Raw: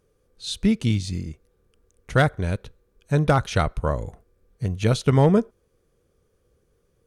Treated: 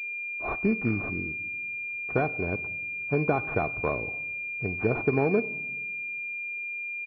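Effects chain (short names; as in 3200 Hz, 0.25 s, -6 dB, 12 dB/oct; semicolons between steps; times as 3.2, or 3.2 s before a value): HPF 170 Hz 12 dB/oct; comb 2.7 ms, depth 42%; compressor 6:1, threshold -20 dBFS, peak gain reduction 7.5 dB; on a send at -16 dB: reverb RT60 1.2 s, pre-delay 5 ms; on the sum: pulse-width modulation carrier 2400 Hz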